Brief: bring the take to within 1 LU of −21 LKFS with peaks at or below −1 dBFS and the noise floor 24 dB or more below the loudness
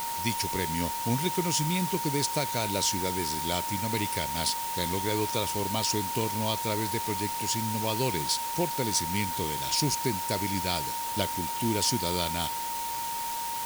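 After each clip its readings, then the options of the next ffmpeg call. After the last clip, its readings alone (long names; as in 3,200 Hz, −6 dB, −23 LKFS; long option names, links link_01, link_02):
interfering tone 930 Hz; level of the tone −32 dBFS; background noise floor −33 dBFS; target noise floor −53 dBFS; integrated loudness −28.5 LKFS; sample peak −11.5 dBFS; target loudness −21.0 LKFS
→ -af "bandreject=frequency=930:width=30"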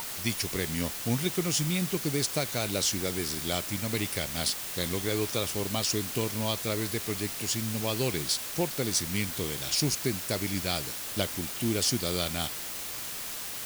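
interfering tone none found; background noise floor −37 dBFS; target noise floor −54 dBFS
→ -af "afftdn=noise_reduction=17:noise_floor=-37"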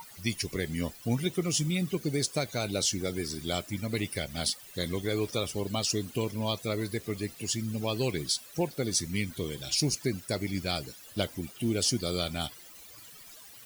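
background noise floor −50 dBFS; target noise floor −55 dBFS
→ -af "afftdn=noise_reduction=6:noise_floor=-50"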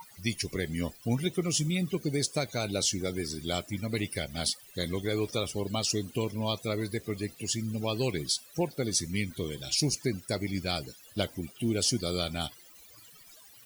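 background noise floor −54 dBFS; target noise floor −56 dBFS
→ -af "afftdn=noise_reduction=6:noise_floor=-54"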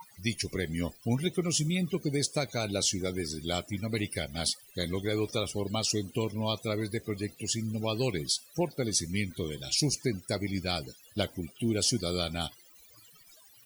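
background noise floor −57 dBFS; integrated loudness −31.5 LKFS; sample peak −13.5 dBFS; target loudness −21.0 LKFS
→ -af "volume=10.5dB"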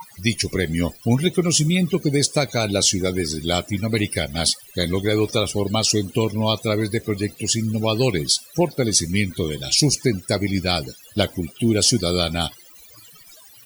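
integrated loudness −21.0 LKFS; sample peak −3.0 dBFS; background noise floor −47 dBFS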